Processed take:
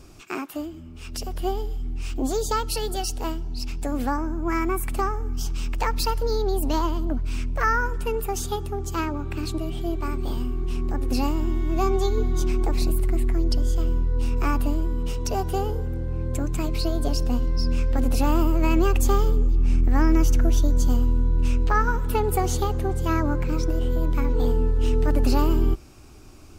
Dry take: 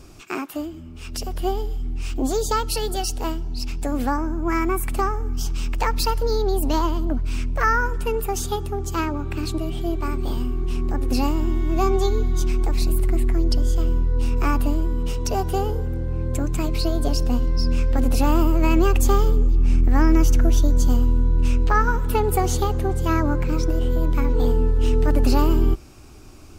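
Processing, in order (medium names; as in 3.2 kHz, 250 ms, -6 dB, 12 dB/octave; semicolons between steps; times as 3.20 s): 12.17–12.91 s: peaking EQ 480 Hz +4.5 dB 2.9 oct; trim -2.5 dB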